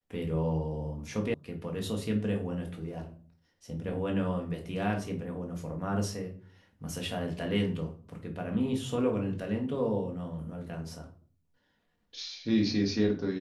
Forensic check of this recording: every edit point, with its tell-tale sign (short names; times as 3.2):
1.34 sound cut off